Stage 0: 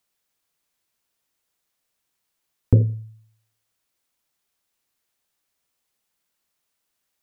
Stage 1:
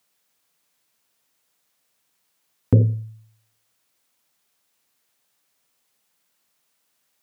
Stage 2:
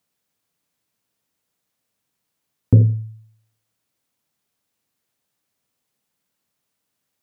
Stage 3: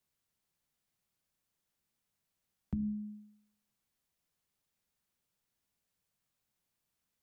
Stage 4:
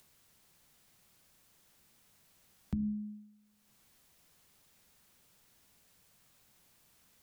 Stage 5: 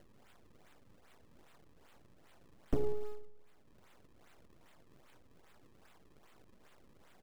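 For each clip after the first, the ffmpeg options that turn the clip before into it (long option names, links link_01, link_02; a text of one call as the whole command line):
ffmpeg -i in.wav -filter_complex "[0:a]highpass=110,bandreject=frequency=360:width=12,asplit=2[link_01][link_02];[link_02]alimiter=limit=-17.5dB:level=0:latency=1:release=31,volume=1dB[link_03];[link_01][link_03]amix=inputs=2:normalize=0" out.wav
ffmpeg -i in.wav -af "lowshelf=frequency=370:gain=11.5,volume=-7dB" out.wav
ffmpeg -i in.wav -filter_complex "[0:a]acrossover=split=310[link_01][link_02];[link_01]alimiter=limit=-12.5dB:level=0:latency=1:release=19[link_03];[link_03][link_02]amix=inputs=2:normalize=0,acompressor=threshold=-26dB:ratio=5,afreqshift=-320,volume=-8dB" out.wav
ffmpeg -i in.wav -af "acompressor=mode=upward:threshold=-53dB:ratio=2.5,volume=1dB" out.wav
ffmpeg -i in.wav -filter_complex "[0:a]aeval=exprs='abs(val(0))':channel_layout=same,aecho=1:1:96|192|288|384|480:0.126|0.068|0.0367|0.0198|0.0107,acrossover=split=880[link_01][link_02];[link_02]acrusher=samples=35:mix=1:aa=0.000001:lfo=1:lforange=56:lforate=2.5[link_03];[link_01][link_03]amix=inputs=2:normalize=0,volume=5.5dB" out.wav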